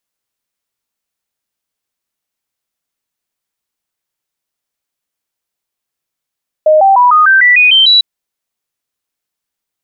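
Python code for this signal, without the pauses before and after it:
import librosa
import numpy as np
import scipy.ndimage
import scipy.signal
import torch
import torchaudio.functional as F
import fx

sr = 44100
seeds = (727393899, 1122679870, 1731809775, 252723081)

y = fx.stepped_sweep(sr, from_hz=619.0, direction='up', per_octave=3, tones=9, dwell_s=0.15, gap_s=0.0, level_db=-3.5)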